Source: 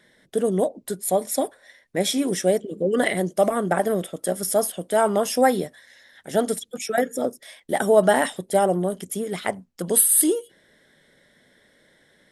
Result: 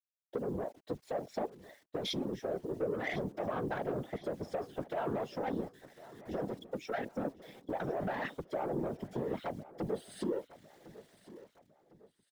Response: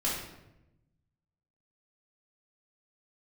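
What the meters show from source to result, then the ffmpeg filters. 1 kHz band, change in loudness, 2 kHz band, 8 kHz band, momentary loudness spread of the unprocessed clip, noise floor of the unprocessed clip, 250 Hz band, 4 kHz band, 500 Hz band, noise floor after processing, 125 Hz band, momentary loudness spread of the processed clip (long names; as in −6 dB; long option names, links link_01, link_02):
−15.0 dB, −16.0 dB, −14.5 dB, below −30 dB, 11 LU, −61 dBFS, −13.0 dB, −13.5 dB, −15.5 dB, −76 dBFS, −10.0 dB, 18 LU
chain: -filter_complex "[0:a]lowpass=frequency=4800:width=0.5412,lowpass=frequency=4800:width=1.3066,afwtdn=0.0355,adynamicequalizer=threshold=0.02:dfrequency=490:dqfactor=2:tfrequency=490:tqfactor=2:attack=5:release=100:ratio=0.375:range=4:mode=cutabove:tftype=bell,acrossover=split=230[link_01][link_02];[link_02]dynaudnorm=framelen=160:gausssize=13:maxgain=16dB[link_03];[link_01][link_03]amix=inputs=2:normalize=0,alimiter=limit=-11.5dB:level=0:latency=1:release=13,acompressor=threshold=-26dB:ratio=12,acrusher=bits=9:mix=0:aa=0.000001,asoftclip=type=tanh:threshold=-24.5dB,afftfilt=real='hypot(re,im)*cos(2*PI*random(0))':imag='hypot(re,im)*sin(2*PI*random(1))':win_size=512:overlap=0.75,asplit=2[link_04][link_05];[link_05]aecho=0:1:1055|2110|3165:0.126|0.0516|0.0212[link_06];[link_04][link_06]amix=inputs=2:normalize=0,volume=2dB"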